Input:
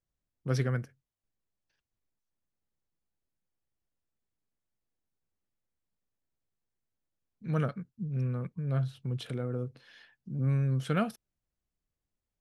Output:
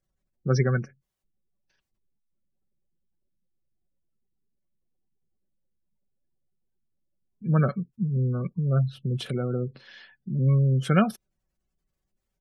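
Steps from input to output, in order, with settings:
gate on every frequency bin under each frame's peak −30 dB strong
comb filter 5.3 ms, depth 41%
level +7 dB

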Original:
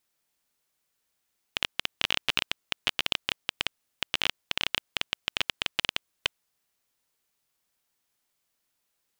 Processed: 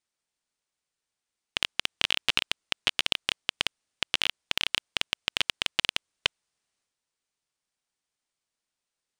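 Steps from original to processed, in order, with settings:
elliptic low-pass filter 9,500 Hz, stop band 40 dB
transient designer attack +9 dB, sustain +5 dB
level −6 dB

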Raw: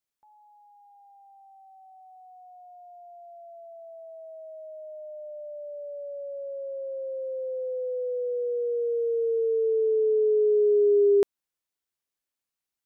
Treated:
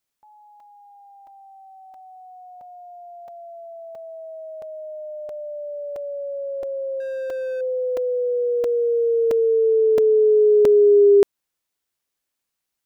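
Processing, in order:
0:07.00–0:07.61: running median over 41 samples
regular buffer underruns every 0.67 s, samples 128, zero, from 0:00.60
level +7 dB

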